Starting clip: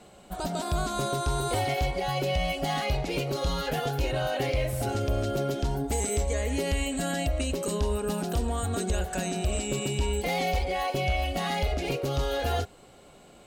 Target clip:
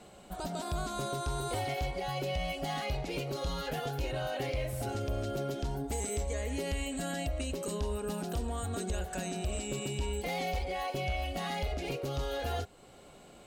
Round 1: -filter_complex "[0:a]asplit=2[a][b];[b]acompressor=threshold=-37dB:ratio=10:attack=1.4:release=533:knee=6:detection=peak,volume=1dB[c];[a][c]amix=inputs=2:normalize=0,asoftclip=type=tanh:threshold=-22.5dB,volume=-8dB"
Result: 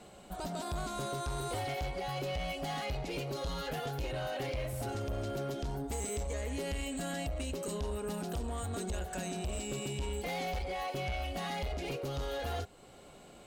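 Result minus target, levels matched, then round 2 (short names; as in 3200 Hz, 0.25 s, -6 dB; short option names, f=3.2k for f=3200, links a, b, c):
soft clip: distortion +18 dB
-filter_complex "[0:a]asplit=2[a][b];[b]acompressor=threshold=-37dB:ratio=10:attack=1.4:release=533:knee=6:detection=peak,volume=1dB[c];[a][c]amix=inputs=2:normalize=0,asoftclip=type=tanh:threshold=-11.5dB,volume=-8dB"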